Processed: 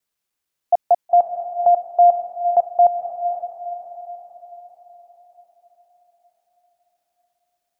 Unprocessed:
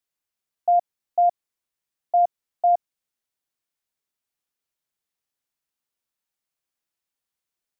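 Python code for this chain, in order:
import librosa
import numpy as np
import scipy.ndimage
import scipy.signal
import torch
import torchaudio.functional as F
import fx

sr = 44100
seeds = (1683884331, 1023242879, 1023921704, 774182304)

y = fx.block_reorder(x, sr, ms=151.0, group=4)
y = fx.echo_diffused(y, sr, ms=498, feedback_pct=50, wet_db=-9)
y = y * 10.0 ** (5.5 / 20.0)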